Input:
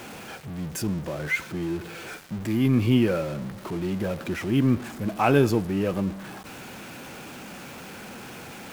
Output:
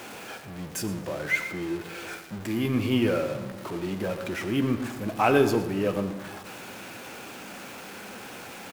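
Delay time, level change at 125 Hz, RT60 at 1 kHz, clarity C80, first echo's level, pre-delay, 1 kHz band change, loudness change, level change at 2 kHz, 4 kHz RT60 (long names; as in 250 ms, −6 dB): 114 ms, −6.0 dB, 1.3 s, 11.0 dB, −15.0 dB, 9 ms, +0.5 dB, −2.0 dB, +1.0 dB, 0.80 s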